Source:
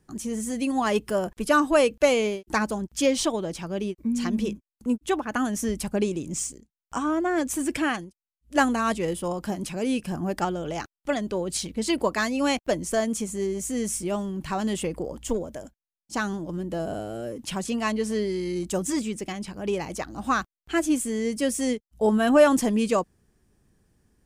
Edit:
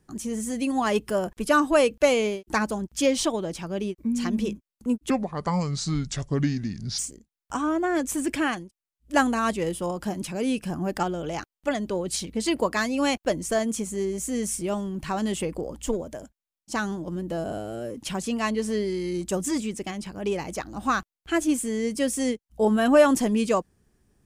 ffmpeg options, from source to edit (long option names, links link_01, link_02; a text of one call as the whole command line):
ffmpeg -i in.wav -filter_complex "[0:a]asplit=3[link_01][link_02][link_03];[link_01]atrim=end=5.104[link_04];[link_02]atrim=start=5.1:end=6.4,asetpts=PTS-STARTPTS,asetrate=30429,aresample=44100[link_05];[link_03]atrim=start=6.396[link_06];[link_04][link_05]acrossfade=duration=0.004:curve1=hsin:curve2=hsin[link_07];[link_07][link_06]acrossfade=duration=0.004:curve1=hsin:curve2=hsin" out.wav